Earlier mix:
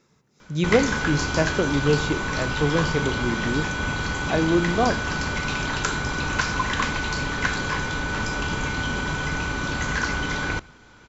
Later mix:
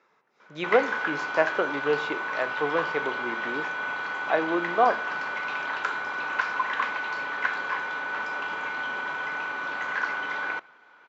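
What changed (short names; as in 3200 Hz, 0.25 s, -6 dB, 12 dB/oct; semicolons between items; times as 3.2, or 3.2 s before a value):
speech +5.5 dB; master: add BPF 700–2000 Hz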